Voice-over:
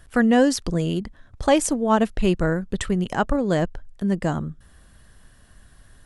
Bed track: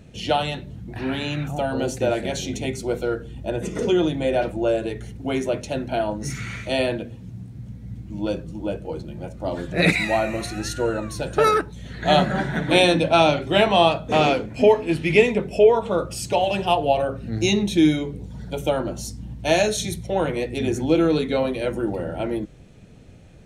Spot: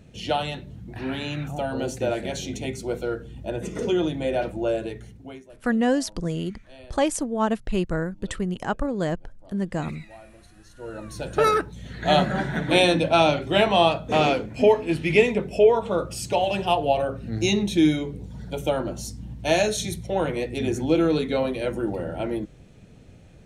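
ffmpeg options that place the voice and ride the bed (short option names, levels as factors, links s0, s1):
-filter_complex "[0:a]adelay=5500,volume=0.596[s0];[1:a]volume=9.44,afade=t=out:st=4.81:d=0.63:silence=0.0841395,afade=t=in:st=10.73:d=0.68:silence=0.0707946[s1];[s0][s1]amix=inputs=2:normalize=0"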